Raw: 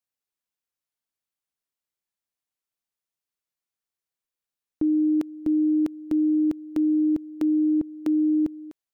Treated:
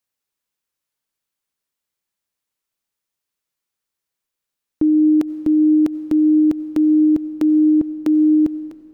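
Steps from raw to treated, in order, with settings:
notch filter 720 Hz, Q 12
on a send: convolution reverb RT60 2.6 s, pre-delay 50 ms, DRR 15.5 dB
on the sum: level +7 dB

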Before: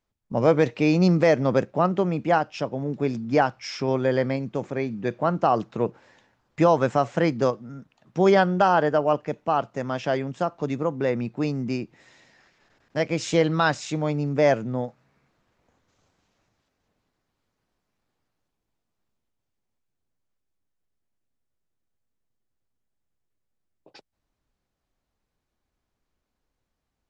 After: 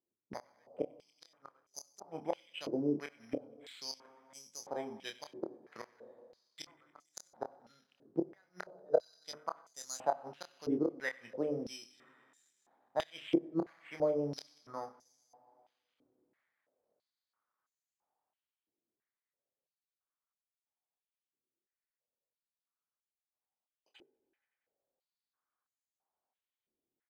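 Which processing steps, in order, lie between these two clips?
high-shelf EQ 5,400 Hz −10 dB
mains-hum notches 50/100/150/200/250/300/350/400/450 Hz
gate with flip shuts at −13 dBFS, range −38 dB
in parallel at −6.5 dB: slack as between gear wheels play −30 dBFS
on the sum: double-tracking delay 27 ms −7 dB
delay with a high-pass on its return 94 ms, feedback 75%, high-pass 2,100 Hz, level −16 dB
on a send at −19 dB: convolution reverb RT60 2.7 s, pre-delay 33 ms
on the sum: bad sample-rate conversion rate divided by 8×, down filtered, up hold
band-pass on a step sequencer 3 Hz 350–6,900 Hz
level +1 dB

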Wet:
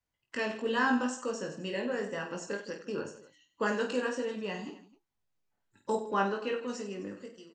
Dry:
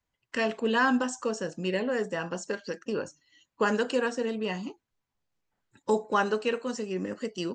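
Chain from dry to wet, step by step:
fade-out on the ending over 0.75 s
0:05.95–0:06.68: high-frequency loss of the air 110 metres
on a send: reverse bouncing-ball delay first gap 20 ms, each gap 1.5×, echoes 5
on the sum: tape wow and flutter 26 cents
level −6 dB

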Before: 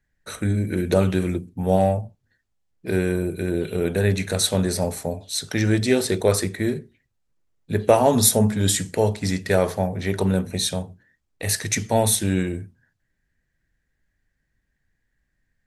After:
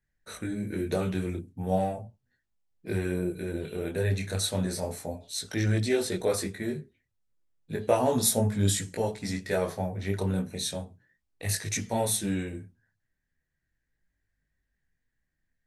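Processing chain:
micro pitch shift up and down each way 12 cents
level −4 dB

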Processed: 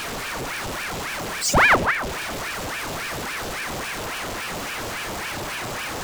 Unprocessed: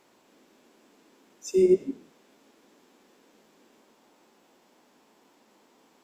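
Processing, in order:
power curve on the samples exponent 0.35
ring modulator whose carrier an LFO sweeps 1,100 Hz, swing 90%, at 3.6 Hz
level +3 dB

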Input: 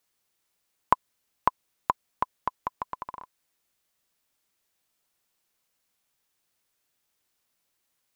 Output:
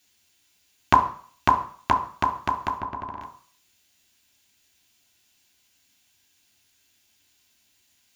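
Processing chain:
0:02.78–0:03.21: low-pass filter 1,100 Hz 6 dB per octave
convolution reverb RT60 0.50 s, pre-delay 3 ms, DRR 4 dB
level +7.5 dB

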